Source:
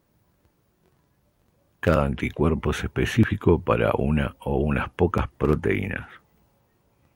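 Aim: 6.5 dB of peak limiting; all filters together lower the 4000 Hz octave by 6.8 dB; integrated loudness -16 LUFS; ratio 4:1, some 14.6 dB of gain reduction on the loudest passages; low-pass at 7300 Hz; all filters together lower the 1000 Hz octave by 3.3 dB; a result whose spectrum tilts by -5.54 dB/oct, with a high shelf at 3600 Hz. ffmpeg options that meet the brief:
-af "lowpass=7.3k,equalizer=f=1k:t=o:g=-3.5,highshelf=f=3.6k:g=-3,equalizer=f=4k:t=o:g=-8,acompressor=threshold=-31dB:ratio=4,volume=21.5dB,alimiter=limit=-2dB:level=0:latency=1"

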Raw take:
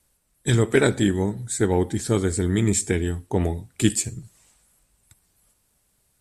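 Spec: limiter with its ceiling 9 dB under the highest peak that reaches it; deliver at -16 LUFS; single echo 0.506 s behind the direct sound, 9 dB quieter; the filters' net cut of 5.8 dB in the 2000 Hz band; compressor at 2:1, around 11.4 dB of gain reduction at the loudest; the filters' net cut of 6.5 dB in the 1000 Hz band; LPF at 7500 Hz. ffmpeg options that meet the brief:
-af "lowpass=7.5k,equalizer=f=1k:t=o:g=-8,equalizer=f=2k:t=o:g=-4.5,acompressor=threshold=-36dB:ratio=2,alimiter=level_in=1.5dB:limit=-24dB:level=0:latency=1,volume=-1.5dB,aecho=1:1:506:0.355,volume=20.5dB"

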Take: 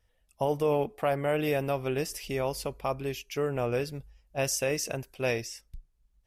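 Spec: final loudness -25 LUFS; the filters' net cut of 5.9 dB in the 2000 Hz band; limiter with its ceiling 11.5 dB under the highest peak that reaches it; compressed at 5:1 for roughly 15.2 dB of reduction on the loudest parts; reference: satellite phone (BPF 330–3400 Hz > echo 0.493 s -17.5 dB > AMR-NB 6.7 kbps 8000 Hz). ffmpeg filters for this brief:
-af "equalizer=f=2k:t=o:g=-7,acompressor=threshold=-41dB:ratio=5,alimiter=level_in=16dB:limit=-24dB:level=0:latency=1,volume=-16dB,highpass=330,lowpass=3.4k,aecho=1:1:493:0.133,volume=28.5dB" -ar 8000 -c:a libopencore_amrnb -b:a 6700

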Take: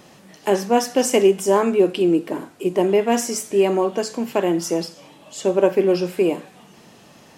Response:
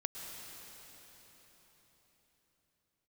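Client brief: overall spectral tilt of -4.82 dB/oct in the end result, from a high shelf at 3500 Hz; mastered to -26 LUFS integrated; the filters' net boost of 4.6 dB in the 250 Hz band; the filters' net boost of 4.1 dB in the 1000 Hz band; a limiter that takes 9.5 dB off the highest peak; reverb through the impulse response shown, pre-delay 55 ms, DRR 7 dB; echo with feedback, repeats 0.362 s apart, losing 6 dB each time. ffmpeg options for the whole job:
-filter_complex "[0:a]equalizer=f=250:t=o:g=6.5,equalizer=f=1k:t=o:g=5.5,highshelf=f=3.5k:g=-5.5,alimiter=limit=-9.5dB:level=0:latency=1,aecho=1:1:362|724|1086|1448|1810|2172:0.501|0.251|0.125|0.0626|0.0313|0.0157,asplit=2[a][b];[1:a]atrim=start_sample=2205,adelay=55[c];[b][c]afir=irnorm=-1:irlink=0,volume=-7.5dB[d];[a][d]amix=inputs=2:normalize=0,volume=-7.5dB"

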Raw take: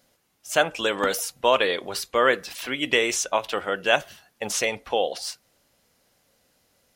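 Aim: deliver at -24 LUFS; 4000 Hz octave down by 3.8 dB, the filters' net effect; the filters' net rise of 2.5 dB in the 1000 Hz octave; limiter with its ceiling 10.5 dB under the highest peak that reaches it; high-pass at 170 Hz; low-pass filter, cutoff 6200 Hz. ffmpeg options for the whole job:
-af "highpass=170,lowpass=6.2k,equalizer=f=1k:t=o:g=3.5,equalizer=f=4k:t=o:g=-5,volume=4.5dB,alimiter=limit=-10dB:level=0:latency=1"

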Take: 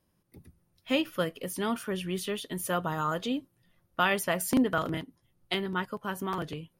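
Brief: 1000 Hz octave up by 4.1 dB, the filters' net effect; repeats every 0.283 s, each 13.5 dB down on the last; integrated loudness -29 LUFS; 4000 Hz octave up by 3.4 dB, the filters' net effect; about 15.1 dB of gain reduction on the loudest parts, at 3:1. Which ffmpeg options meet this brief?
-af "equalizer=f=1k:t=o:g=5,equalizer=f=4k:t=o:g=4.5,acompressor=threshold=-41dB:ratio=3,aecho=1:1:283|566:0.211|0.0444,volume=12dB"

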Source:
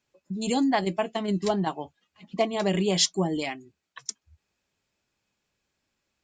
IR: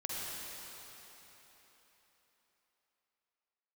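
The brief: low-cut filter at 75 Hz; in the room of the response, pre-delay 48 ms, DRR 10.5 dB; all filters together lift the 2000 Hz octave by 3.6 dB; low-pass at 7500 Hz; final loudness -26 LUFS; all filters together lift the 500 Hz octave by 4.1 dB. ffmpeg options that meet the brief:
-filter_complex "[0:a]highpass=75,lowpass=7.5k,equalizer=f=500:t=o:g=5.5,equalizer=f=2k:t=o:g=4,asplit=2[a][b];[1:a]atrim=start_sample=2205,adelay=48[c];[b][c]afir=irnorm=-1:irlink=0,volume=-14dB[d];[a][d]amix=inputs=2:normalize=0,volume=-1.5dB"

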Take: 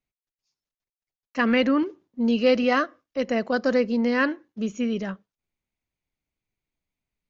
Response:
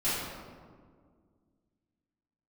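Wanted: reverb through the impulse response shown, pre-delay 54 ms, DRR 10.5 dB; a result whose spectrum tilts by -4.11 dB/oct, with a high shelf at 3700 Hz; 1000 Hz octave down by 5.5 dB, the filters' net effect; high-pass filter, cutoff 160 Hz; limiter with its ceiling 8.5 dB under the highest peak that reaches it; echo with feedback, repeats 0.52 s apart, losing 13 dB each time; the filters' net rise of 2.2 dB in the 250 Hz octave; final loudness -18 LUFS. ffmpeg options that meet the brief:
-filter_complex "[0:a]highpass=160,equalizer=f=250:t=o:g=3.5,equalizer=f=1k:t=o:g=-8.5,highshelf=f=3.7k:g=7,alimiter=limit=-17dB:level=0:latency=1,aecho=1:1:520|1040|1560:0.224|0.0493|0.0108,asplit=2[a][b];[1:a]atrim=start_sample=2205,adelay=54[c];[b][c]afir=irnorm=-1:irlink=0,volume=-20.5dB[d];[a][d]amix=inputs=2:normalize=0,volume=8dB"

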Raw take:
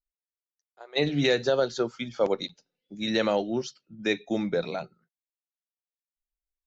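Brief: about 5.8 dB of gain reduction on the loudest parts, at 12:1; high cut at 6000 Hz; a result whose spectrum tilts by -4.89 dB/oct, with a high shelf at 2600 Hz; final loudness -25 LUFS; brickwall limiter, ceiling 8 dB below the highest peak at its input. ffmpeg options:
-af "lowpass=6k,highshelf=f=2.6k:g=-7,acompressor=threshold=-25dB:ratio=12,volume=11dB,alimiter=limit=-13.5dB:level=0:latency=1"

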